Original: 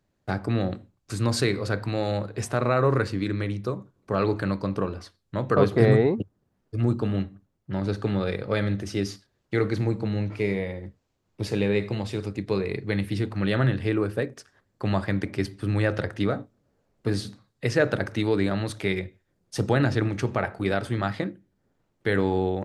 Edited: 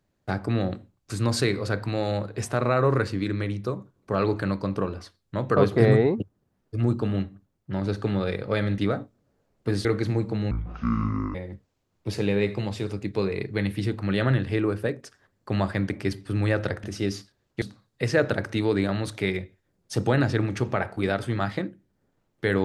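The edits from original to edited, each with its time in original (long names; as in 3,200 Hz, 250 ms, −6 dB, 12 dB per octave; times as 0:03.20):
0:08.78–0:09.56: swap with 0:16.17–0:17.24
0:10.22–0:10.68: play speed 55%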